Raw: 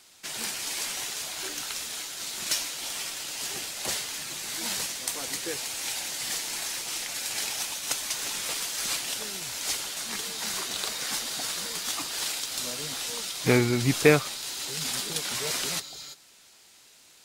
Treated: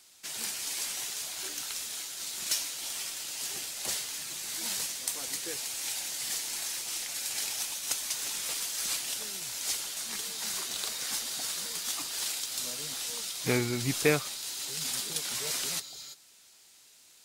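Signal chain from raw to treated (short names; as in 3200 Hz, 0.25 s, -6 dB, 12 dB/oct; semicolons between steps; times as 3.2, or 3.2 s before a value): high shelf 4000 Hz +7 dB; gain -7 dB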